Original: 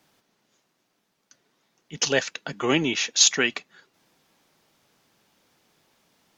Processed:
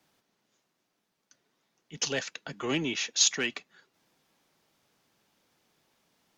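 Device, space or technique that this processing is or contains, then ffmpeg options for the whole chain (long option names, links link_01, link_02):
one-band saturation: -filter_complex "[0:a]acrossover=split=290|2300[link_01][link_02][link_03];[link_02]asoftclip=type=tanh:threshold=-22.5dB[link_04];[link_01][link_04][link_03]amix=inputs=3:normalize=0,volume=-6dB"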